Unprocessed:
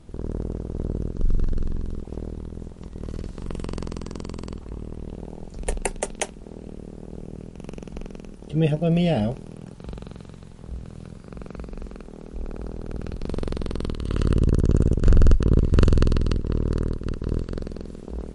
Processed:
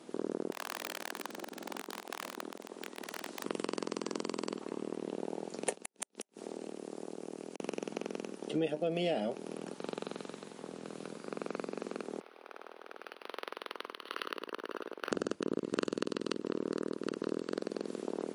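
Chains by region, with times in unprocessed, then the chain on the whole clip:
0.51–3.45 s: high-pass 220 Hz 24 dB/octave + integer overflow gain 30 dB + transformer saturation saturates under 410 Hz
5.74–7.60 s: tone controls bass -2 dB, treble +5 dB + compression 10:1, threshold -35 dBFS + inverted gate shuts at -28 dBFS, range -41 dB
12.20–15.12 s: high-pass 1.1 kHz + distance through air 55 m + decimation joined by straight lines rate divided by 6×
whole clip: high-pass 260 Hz 24 dB/octave; compression 4:1, threshold -34 dBFS; trim +3 dB

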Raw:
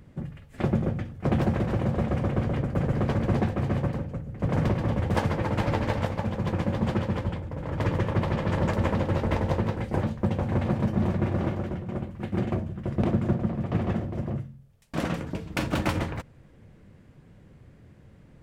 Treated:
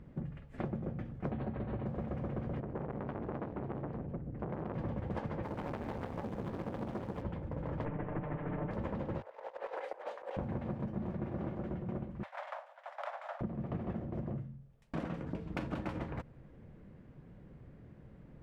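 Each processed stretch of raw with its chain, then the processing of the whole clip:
1.31–1.86 s: brick-wall FIR low-pass 4.6 kHz + comb of notches 170 Hz
2.60–4.74 s: low-pass 2.4 kHz 6 dB/octave + transformer saturation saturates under 940 Hz
5.43–7.22 s: short-mantissa float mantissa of 2-bit + transformer saturation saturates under 910 Hz
7.85–8.71 s: comb filter that takes the minimum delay 6.7 ms + low-pass 2.5 kHz 24 dB/octave
9.21–10.37 s: steep high-pass 490 Hz + compressor with a negative ratio -40 dBFS, ratio -0.5
12.23–13.41 s: comb filter that takes the minimum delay 0.54 ms + steep high-pass 570 Hz 96 dB/octave
whole clip: low-pass 1.3 kHz 6 dB/octave; peaking EQ 94 Hz -10 dB 0.27 oct; compression, threshold -34 dBFS; trim -1 dB

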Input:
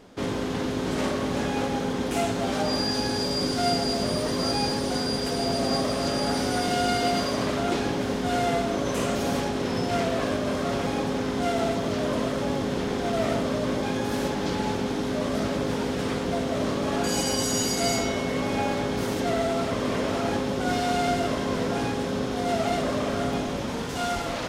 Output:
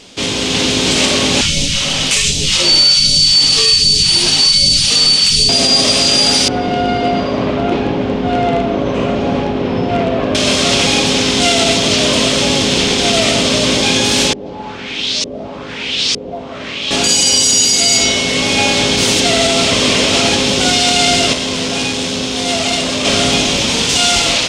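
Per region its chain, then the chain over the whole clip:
1.41–5.49 s: phase shifter stages 2, 1.3 Hz, lowest notch 130–1500 Hz + frequency shift -260 Hz
6.48–10.35 s: low-pass 1.1 kHz + hard clipper -16.5 dBFS
14.33–16.91 s: pre-emphasis filter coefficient 0.8 + LFO low-pass saw up 1.1 Hz 410–5800 Hz
21.33–23.05 s: feedback comb 85 Hz, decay 0.22 s + transformer saturation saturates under 460 Hz
whole clip: high-order bell 4.6 kHz +15.5 dB 2.3 oct; level rider gain up to 4.5 dB; loudness maximiser +7.5 dB; trim -1 dB

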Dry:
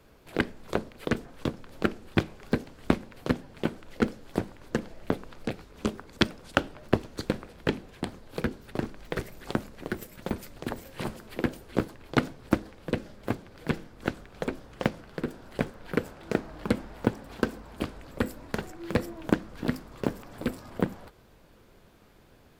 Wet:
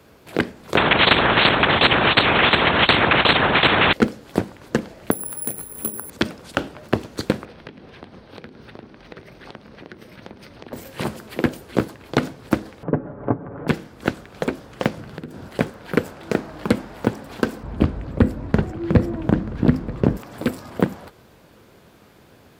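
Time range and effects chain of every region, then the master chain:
0.77–3.93 s: bass shelf 300 Hz +6.5 dB + LPC vocoder at 8 kHz whisper + spectrum-flattening compressor 10:1
5.11–6.10 s: treble shelf 4.2 kHz -12 dB + compression 3:1, threshold -38 dBFS + careless resampling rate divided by 4×, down filtered, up zero stuff
7.45–10.73 s: Savitzky-Golay filter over 15 samples + compression 8:1, threshold -43 dBFS + delay 109 ms -15 dB
12.83–13.68 s: low-pass 1.3 kHz 24 dB/octave + comb 7 ms, depth 56% + upward compressor, threshold -30 dBFS
14.97–15.48 s: peaking EQ 110 Hz +9.5 dB 2.3 oct + compression 8:1, threshold -37 dBFS
17.63–20.17 s: RIAA curve playback + delay 933 ms -20 dB
whole clip: high-pass 77 Hz 12 dB/octave; loudness maximiser +9.5 dB; trim -1.5 dB

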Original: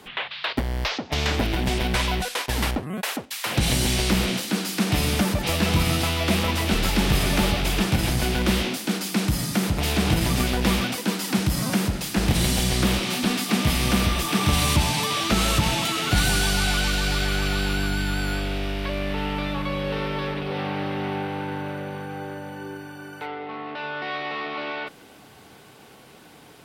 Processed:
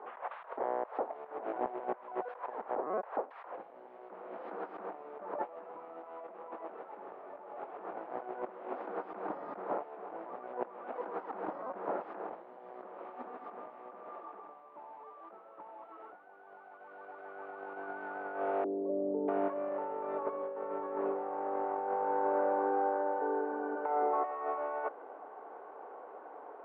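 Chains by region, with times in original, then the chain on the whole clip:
18.64–24.24 s: peaking EQ 250 Hz +10.5 dB 1.5 oct + three bands offset in time mids, lows, highs 230/640 ms, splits 150/450 Hz
whole clip: high-pass 460 Hz 24 dB/octave; compressor with a negative ratio -34 dBFS, ratio -0.5; low-pass 1.1 kHz 24 dB/octave

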